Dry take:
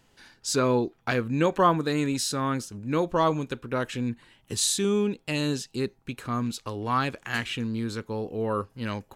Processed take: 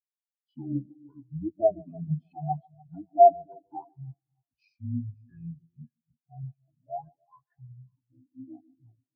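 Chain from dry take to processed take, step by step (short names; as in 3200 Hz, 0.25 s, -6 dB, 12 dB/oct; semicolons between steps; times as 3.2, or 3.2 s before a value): spectral gain 2.3–3.89, 1100–7300 Hz +9 dB; on a send: split-band echo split 1700 Hz, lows 0.3 s, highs 0.543 s, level -9 dB; on the sum: pitch shift -8 st; in parallel at -1 dB: limiter -16.5 dBFS, peak gain reduction 10 dB; on the sum: HPF 96 Hz 24 dB/oct; bell 230 Hz -5.5 dB 0.3 oct; resonator 170 Hz, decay 1.6 s, mix 60%; narrowing echo 0.145 s, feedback 48%, band-pass 470 Hz, level -6 dB; frequency shift -19 Hz; spectral expander 4:1; gain +5 dB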